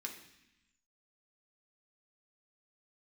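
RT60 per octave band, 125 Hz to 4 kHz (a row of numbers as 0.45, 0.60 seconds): 1.2, 1.2, 0.80, 0.90, 1.2, 1.1 seconds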